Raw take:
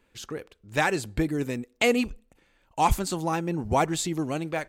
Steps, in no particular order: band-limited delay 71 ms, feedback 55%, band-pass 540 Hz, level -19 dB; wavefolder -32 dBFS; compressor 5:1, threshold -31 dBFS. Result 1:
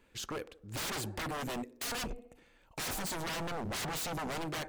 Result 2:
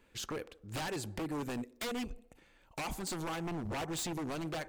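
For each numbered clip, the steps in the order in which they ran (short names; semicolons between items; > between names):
band-limited delay > wavefolder > compressor; compressor > band-limited delay > wavefolder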